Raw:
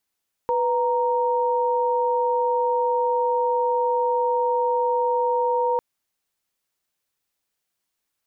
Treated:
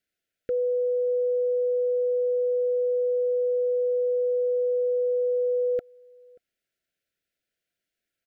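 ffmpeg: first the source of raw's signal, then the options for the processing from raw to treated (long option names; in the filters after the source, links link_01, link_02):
-f lavfi -i "aevalsrc='0.0841*(sin(2*PI*493.88*t)+sin(2*PI*932.33*t))':duration=5.3:sample_rate=44100"
-filter_complex "[0:a]asuperstop=centerf=980:order=20:qfactor=1.6,bass=frequency=250:gain=-2,treble=frequency=4000:gain=-10,asplit=2[link_01][link_02];[link_02]adelay=583.1,volume=-27dB,highshelf=frequency=4000:gain=-13.1[link_03];[link_01][link_03]amix=inputs=2:normalize=0"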